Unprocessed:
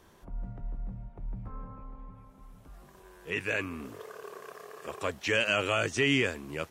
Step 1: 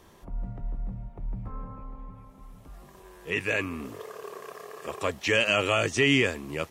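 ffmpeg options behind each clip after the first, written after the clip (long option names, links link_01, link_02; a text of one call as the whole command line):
ffmpeg -i in.wav -af "bandreject=frequency=1500:width=10,volume=4dB" out.wav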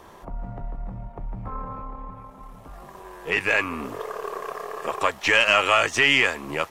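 ffmpeg -i in.wav -filter_complex "[0:a]aeval=exprs='if(lt(val(0),0),0.708*val(0),val(0))':channel_layout=same,equalizer=frequency=900:width=0.59:gain=9.5,acrossover=split=830[link_01][link_02];[link_01]acompressor=threshold=-32dB:ratio=6[link_03];[link_03][link_02]amix=inputs=2:normalize=0,volume=4dB" out.wav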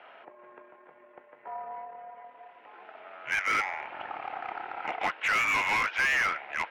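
ffmpeg -i in.wav -filter_complex "[0:a]highpass=frequency=300:width_type=q:width=0.5412,highpass=frequency=300:width_type=q:width=1.307,lowpass=frequency=3000:width_type=q:width=0.5176,lowpass=frequency=3000:width_type=q:width=0.7071,lowpass=frequency=3000:width_type=q:width=1.932,afreqshift=-340,aderivative,asplit=2[link_01][link_02];[link_02]highpass=frequency=720:poles=1,volume=26dB,asoftclip=type=tanh:threshold=-16.5dB[link_03];[link_01][link_03]amix=inputs=2:normalize=0,lowpass=frequency=2100:poles=1,volume=-6dB" out.wav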